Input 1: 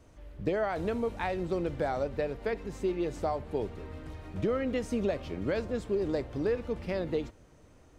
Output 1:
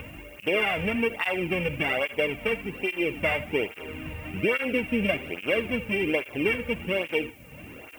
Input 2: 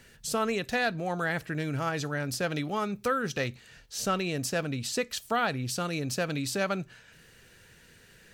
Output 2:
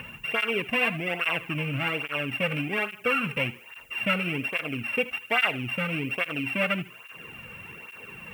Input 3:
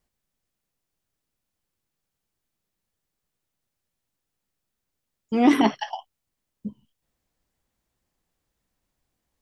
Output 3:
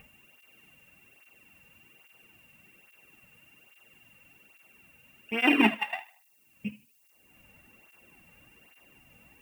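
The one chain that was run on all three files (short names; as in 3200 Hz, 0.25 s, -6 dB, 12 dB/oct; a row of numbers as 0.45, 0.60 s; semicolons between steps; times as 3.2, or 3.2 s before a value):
sample sorter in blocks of 16 samples; upward compressor, threshold -33 dBFS; resonant high shelf 3700 Hz -14 dB, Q 3; added noise violet -61 dBFS; thinning echo 77 ms, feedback 36%, high-pass 380 Hz, level -14.5 dB; tape flanging out of phase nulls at 1.2 Hz, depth 3.1 ms; match loudness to -27 LUFS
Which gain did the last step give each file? +6.5, +3.5, -1.5 dB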